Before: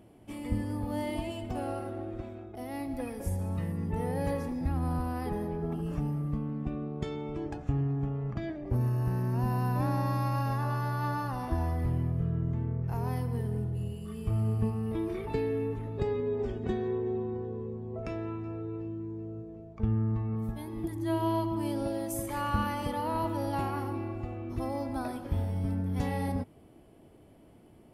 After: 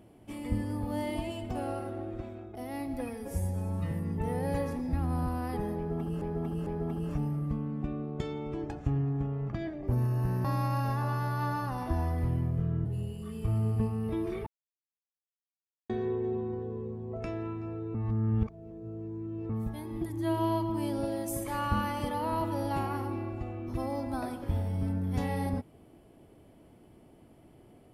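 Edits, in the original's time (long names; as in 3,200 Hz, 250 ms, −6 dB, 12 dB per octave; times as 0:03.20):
0:03.09–0:03.64: time-stretch 1.5×
0:05.49–0:05.94: repeat, 3 plays
0:09.27–0:10.06: remove
0:12.47–0:13.68: remove
0:15.29–0:16.72: silence
0:18.77–0:20.32: reverse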